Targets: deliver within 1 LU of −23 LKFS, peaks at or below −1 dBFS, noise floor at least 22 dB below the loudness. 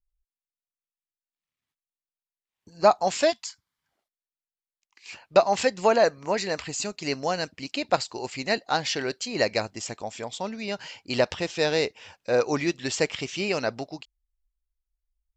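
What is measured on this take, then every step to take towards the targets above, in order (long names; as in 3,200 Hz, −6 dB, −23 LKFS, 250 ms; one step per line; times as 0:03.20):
integrated loudness −26.5 LKFS; sample peak −5.0 dBFS; target loudness −23.0 LKFS
→ level +3.5 dB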